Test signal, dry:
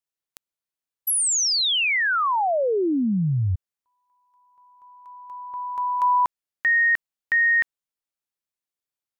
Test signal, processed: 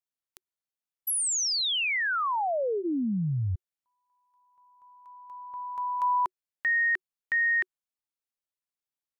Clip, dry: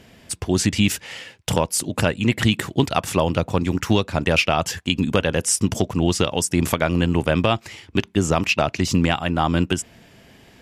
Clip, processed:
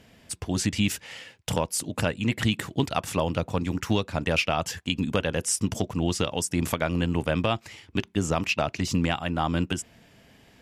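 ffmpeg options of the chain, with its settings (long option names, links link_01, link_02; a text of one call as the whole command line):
ffmpeg -i in.wav -af "bandreject=frequency=370:width=12,volume=-6dB" out.wav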